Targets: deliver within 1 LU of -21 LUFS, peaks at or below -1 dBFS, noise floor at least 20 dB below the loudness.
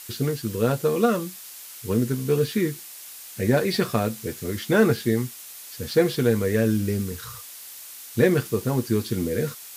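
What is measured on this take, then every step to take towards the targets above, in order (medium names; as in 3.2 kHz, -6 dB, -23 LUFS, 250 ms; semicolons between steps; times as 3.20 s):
noise floor -42 dBFS; noise floor target -44 dBFS; loudness -24.0 LUFS; peak level -8.0 dBFS; loudness target -21.0 LUFS
-> noise print and reduce 6 dB; trim +3 dB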